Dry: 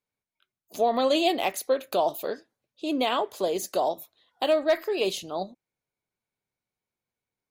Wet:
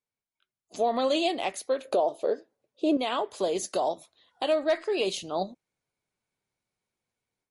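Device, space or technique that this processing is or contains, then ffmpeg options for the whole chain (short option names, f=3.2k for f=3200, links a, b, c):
low-bitrate web radio: -filter_complex "[0:a]asettb=1/sr,asplit=3[a][b][c];[a]atrim=end=1.854[d];[b]atrim=start=1.85:end=2.97,asetpts=PTS-STARTPTS,afade=t=in:d=0.004:c=qsin,afade=t=out:st=1.116:d=0.004:c=qsin,equalizer=f=480:t=o:w=1.8:g=14[e];[c]atrim=start=2.966[f];[d][e]acrossfade=d=0.004:c1=hsin:c2=qsin[g];[g][f]acrossfade=d=0.004:c1=qsin:c2=hsin,dynaudnorm=f=570:g=3:m=8.5dB,alimiter=limit=-11dB:level=0:latency=1:release=476,volume=-5dB" -ar 32000 -c:a libmp3lame -b:a 48k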